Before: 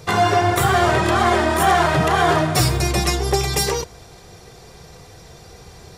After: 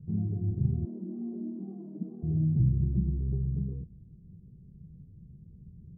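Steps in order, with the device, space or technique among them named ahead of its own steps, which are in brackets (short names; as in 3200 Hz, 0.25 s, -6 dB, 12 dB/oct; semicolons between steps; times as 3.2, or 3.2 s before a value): 0.85–2.23 steep high-pass 200 Hz 72 dB/oct; the neighbour's flat through the wall (LPF 230 Hz 24 dB/oct; bell 180 Hz +8 dB 0.91 oct); gain -8 dB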